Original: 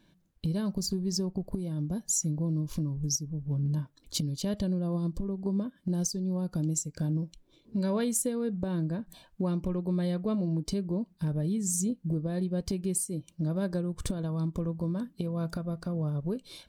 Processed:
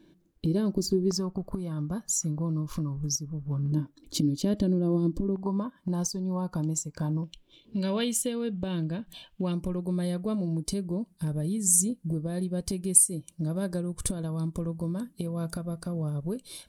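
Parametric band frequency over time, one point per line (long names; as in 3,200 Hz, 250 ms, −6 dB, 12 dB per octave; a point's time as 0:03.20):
parametric band +14.5 dB 0.73 octaves
340 Hz
from 0:01.11 1,200 Hz
from 0:03.72 300 Hz
from 0:05.36 1,000 Hz
from 0:07.24 3,000 Hz
from 0:09.52 10,000 Hz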